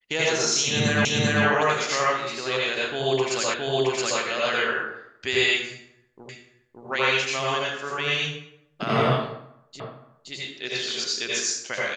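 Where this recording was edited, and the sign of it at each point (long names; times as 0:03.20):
0:01.05: the same again, the last 0.39 s
0:03.54: the same again, the last 0.67 s
0:06.29: the same again, the last 0.57 s
0:09.80: the same again, the last 0.52 s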